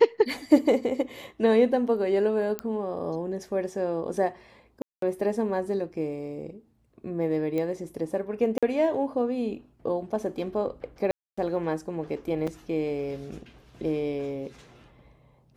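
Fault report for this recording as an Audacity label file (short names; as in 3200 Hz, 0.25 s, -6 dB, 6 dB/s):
2.590000	2.590000	pop -15 dBFS
4.820000	5.020000	gap 0.203 s
7.580000	7.580000	pop -19 dBFS
8.580000	8.630000	gap 46 ms
11.110000	11.380000	gap 0.265 s
12.470000	12.480000	gap 5.2 ms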